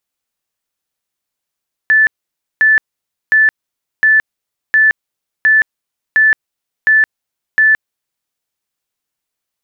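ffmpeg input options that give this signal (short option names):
-f lavfi -i "aevalsrc='0.501*sin(2*PI*1750*mod(t,0.71))*lt(mod(t,0.71),296/1750)':d=6.39:s=44100"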